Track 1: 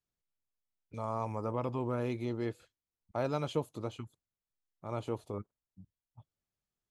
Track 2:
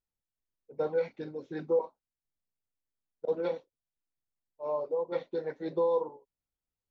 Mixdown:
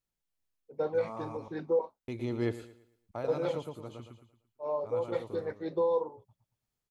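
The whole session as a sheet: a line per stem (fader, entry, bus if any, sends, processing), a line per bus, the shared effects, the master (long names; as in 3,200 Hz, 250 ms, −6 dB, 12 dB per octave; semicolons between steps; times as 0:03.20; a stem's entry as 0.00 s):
−3.0 dB, 0.00 s, muted 0:01.37–0:02.08, no send, echo send −16.5 dB, automatic gain control gain up to 9.5 dB; automatic ducking −13 dB, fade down 0.25 s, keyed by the second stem
−0.5 dB, 0.00 s, no send, no echo send, no processing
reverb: not used
echo: repeating echo 113 ms, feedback 36%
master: no processing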